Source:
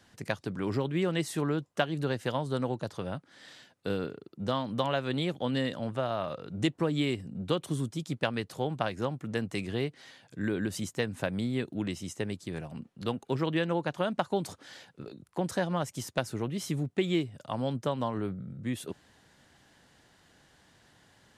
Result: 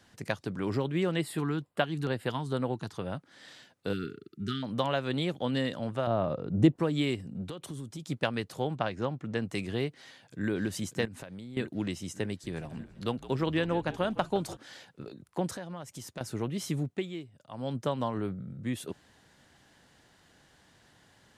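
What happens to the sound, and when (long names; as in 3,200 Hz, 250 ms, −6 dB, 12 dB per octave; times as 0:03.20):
0:01.16–0:03.10: auto-filter notch square 2.2 Hz 560–6,100 Hz
0:03.93–0:04.63: linear-phase brick-wall band-stop 440–1,200 Hz
0:06.07–0:06.76: tilt shelving filter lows +8.5 dB, about 1,100 Hz
0:07.48–0:08.08: downward compressor, threshold −36 dBFS
0:08.75–0:09.42: high-frequency loss of the air 74 metres
0:09.96–0:10.49: delay throw 590 ms, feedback 60%, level −7 dB
0:11.05–0:11.57: downward compressor 16 to 1, threshold −39 dBFS
0:12.27–0:14.57: echo with shifted repeats 162 ms, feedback 55%, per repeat −55 Hz, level −16 dB
0:15.54–0:16.21: downward compressor 2.5 to 1, threshold −41 dBFS
0:16.84–0:17.78: duck −11.5 dB, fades 0.27 s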